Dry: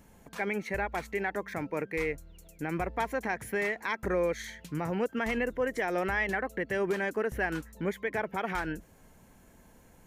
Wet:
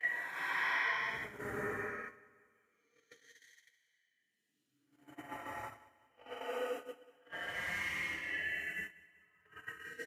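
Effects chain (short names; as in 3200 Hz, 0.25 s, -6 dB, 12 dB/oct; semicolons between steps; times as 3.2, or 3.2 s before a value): median-filter separation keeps percussive; Paulstretch 5.1×, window 0.25 s, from 3.75; small resonant body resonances 1900/3000 Hz, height 10 dB, ringing for 25 ms; gate -38 dBFS, range -30 dB; HPF 71 Hz; feedback echo 0.19 s, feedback 52%, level -21 dB; gain -3 dB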